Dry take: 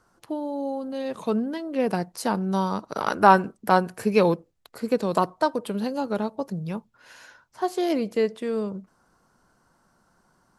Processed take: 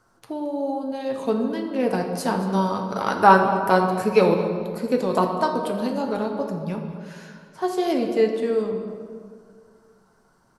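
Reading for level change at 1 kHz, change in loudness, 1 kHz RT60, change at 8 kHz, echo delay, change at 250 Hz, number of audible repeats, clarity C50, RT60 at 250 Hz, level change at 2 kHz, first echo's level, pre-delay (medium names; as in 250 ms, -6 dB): +2.5 dB, +2.5 dB, 1.8 s, +1.0 dB, 222 ms, +2.0 dB, 1, 5.0 dB, 2.3 s, +3.0 dB, -15.5 dB, 5 ms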